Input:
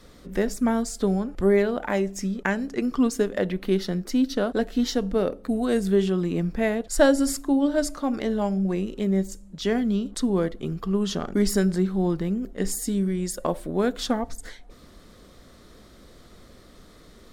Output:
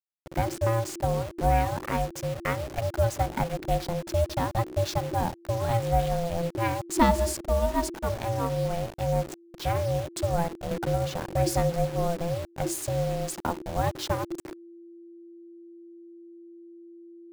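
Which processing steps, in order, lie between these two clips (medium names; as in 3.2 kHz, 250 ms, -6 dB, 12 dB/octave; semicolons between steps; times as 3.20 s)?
send-on-delta sampling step -31.5 dBFS; ring modulator 340 Hz; 10.71–11.15 s: three bands compressed up and down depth 70%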